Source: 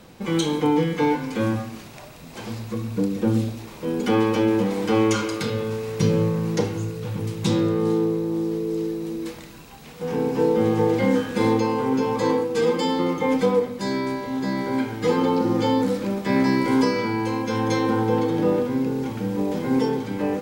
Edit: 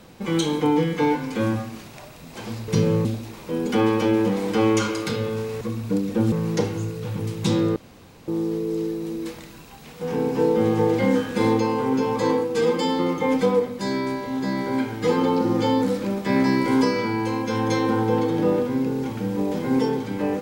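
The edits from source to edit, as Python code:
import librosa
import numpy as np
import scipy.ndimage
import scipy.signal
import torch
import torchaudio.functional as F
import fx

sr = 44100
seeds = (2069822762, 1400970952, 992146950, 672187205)

y = fx.edit(x, sr, fx.swap(start_s=2.68, length_s=0.71, other_s=5.95, other_length_s=0.37),
    fx.room_tone_fill(start_s=7.76, length_s=0.52), tone=tone)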